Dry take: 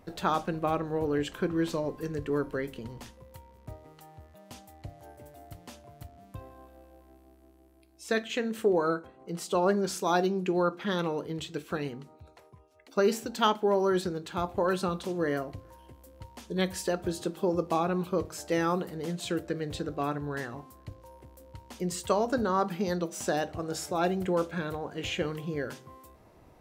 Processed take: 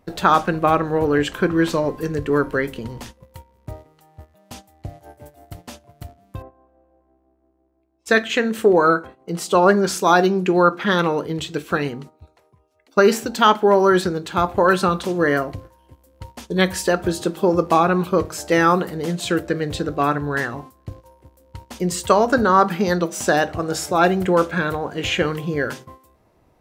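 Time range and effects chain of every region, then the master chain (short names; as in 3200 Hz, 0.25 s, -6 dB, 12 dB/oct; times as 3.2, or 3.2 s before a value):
6.42–8.06 LPF 1100 Hz + low shelf 280 Hz -6.5 dB
whole clip: gate -48 dBFS, range -12 dB; dynamic EQ 1500 Hz, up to +6 dB, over -43 dBFS, Q 1.1; maximiser +11 dB; gain -1 dB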